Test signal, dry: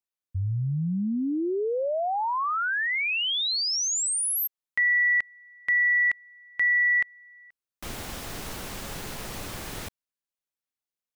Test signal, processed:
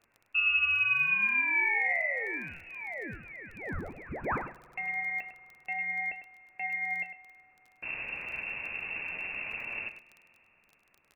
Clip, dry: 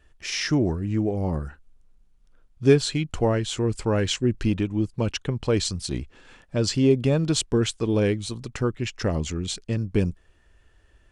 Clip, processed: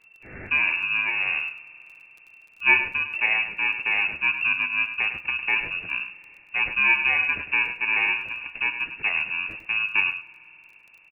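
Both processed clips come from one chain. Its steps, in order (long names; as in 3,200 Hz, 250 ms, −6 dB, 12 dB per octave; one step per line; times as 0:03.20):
samples in bit-reversed order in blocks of 32 samples
in parallel at −4 dB: asymmetric clip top −28.5 dBFS
on the sum: bit-depth reduction 10 bits, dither triangular
voice inversion scrambler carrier 2,700 Hz
flanger 0.31 Hz, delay 8.4 ms, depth 8.3 ms, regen +64%
surface crackle 13 per second −40 dBFS
on a send: single-tap delay 102 ms −10.5 dB
on the sum: spring reverb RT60 3.9 s, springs 48 ms, chirp 25 ms, DRR 19.5 dB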